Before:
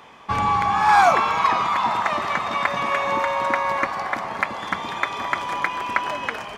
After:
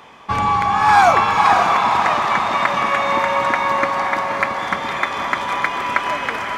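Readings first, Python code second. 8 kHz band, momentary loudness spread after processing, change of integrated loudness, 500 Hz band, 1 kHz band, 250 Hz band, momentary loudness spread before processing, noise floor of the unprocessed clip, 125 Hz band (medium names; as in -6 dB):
+4.5 dB, 8 LU, +4.5 dB, +4.5 dB, +4.5 dB, +4.5 dB, 10 LU, -35 dBFS, +4.5 dB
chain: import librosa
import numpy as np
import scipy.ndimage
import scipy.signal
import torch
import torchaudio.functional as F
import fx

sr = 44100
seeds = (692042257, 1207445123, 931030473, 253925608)

y = fx.echo_diffused(x, sr, ms=543, feedback_pct=44, wet_db=-4.5)
y = y * 10.0 ** (3.0 / 20.0)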